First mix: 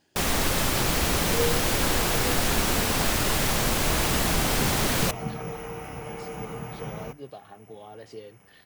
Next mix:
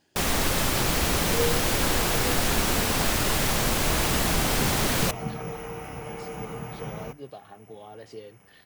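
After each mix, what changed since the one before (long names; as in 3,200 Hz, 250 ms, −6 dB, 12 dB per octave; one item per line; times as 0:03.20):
nothing changed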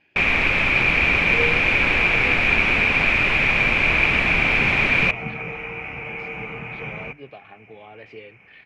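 master: add low-pass with resonance 2,400 Hz, resonance Q 14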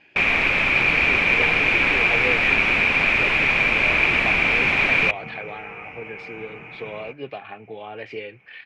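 speech +8.0 dB
second sound −6.0 dB
master: add low-shelf EQ 150 Hz −7 dB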